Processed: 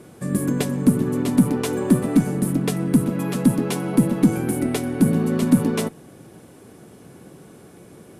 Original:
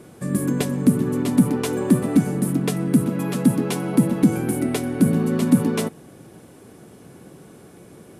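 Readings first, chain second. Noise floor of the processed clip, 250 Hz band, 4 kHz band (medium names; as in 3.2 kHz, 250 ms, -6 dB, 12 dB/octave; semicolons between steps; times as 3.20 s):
-46 dBFS, 0.0 dB, 0.0 dB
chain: Chebyshev shaper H 6 -30 dB, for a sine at -3.5 dBFS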